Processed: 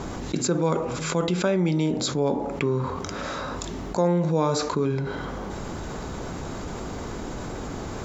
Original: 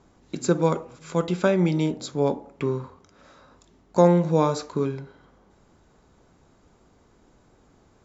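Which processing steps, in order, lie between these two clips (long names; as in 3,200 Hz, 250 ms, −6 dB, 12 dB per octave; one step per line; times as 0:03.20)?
envelope flattener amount 70%
level −6.5 dB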